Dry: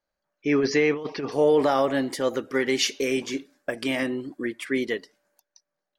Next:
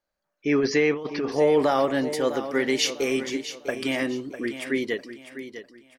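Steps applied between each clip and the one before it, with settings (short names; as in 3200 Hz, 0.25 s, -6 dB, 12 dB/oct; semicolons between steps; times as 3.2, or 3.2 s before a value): feedback echo 0.651 s, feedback 31%, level -11.5 dB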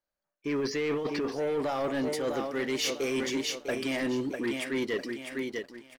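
reverse; compressor 10:1, threshold -29 dBFS, peak gain reduction 13.5 dB; reverse; sample leveller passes 2; gain -3 dB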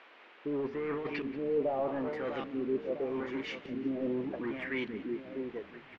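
LFO low-pass saw up 0.82 Hz 210–3000 Hz; band noise 280–2700 Hz -51 dBFS; frequency-shifting echo 0.182 s, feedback 49%, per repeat -53 Hz, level -17.5 dB; gain -6 dB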